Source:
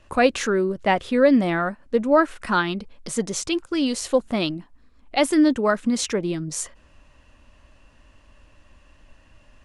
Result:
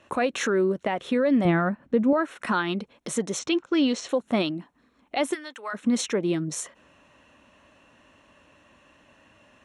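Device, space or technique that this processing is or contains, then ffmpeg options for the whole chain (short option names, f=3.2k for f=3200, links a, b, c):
PA system with an anti-feedback notch: -filter_complex "[0:a]highpass=170,asuperstop=centerf=4800:order=4:qfactor=6.7,alimiter=limit=-17dB:level=0:latency=1:release=201,asettb=1/sr,asplit=3[a][b][c];[a]atrim=end=1.454[d];[b]atrim=start=1.45:end=2.13,asetpts=PTS-STARTPTS,afade=t=in:d=0.004:c=qsin,afade=t=out:st=0.676:d=0.004:c=qsin,bass=f=250:g=11,treble=f=4k:g=-8[e];[c]atrim=start=2.126[f];[d][e]acrossfade=d=0.004:c1=hsin:c2=qsin[g];[g][f]acrossfade=d=0.004:c1=qsin:c2=hsin,asettb=1/sr,asplit=3[h][i][j];[h]atrim=end=3.394[k];[i]atrim=start=3.39:end=4.09,asetpts=PTS-STARTPTS,afade=t=in:d=0.004:c=qsin,afade=t=out:st=0.696:d=0.004:c=qsin,lowpass=f=6.5k:w=0.5412,lowpass=f=6.5k:w=1.3066[l];[j]atrim=start=4.086[m];[k][l]acrossfade=d=0.004:c1=hsin:c2=qsin[n];[n][m]acrossfade=d=0.004:c1=qsin:c2=hsin,highshelf=f=5.1k:g=-5.5,asplit=3[o][p][q];[o]afade=t=out:st=5.33:d=0.02[r];[p]highpass=1.3k,afade=t=in:st=5.33:d=0.02,afade=t=out:st=5.73:d=0.02[s];[q]afade=t=in:st=5.73:d=0.02[t];[r][s][t]amix=inputs=3:normalize=0,volume=2.5dB"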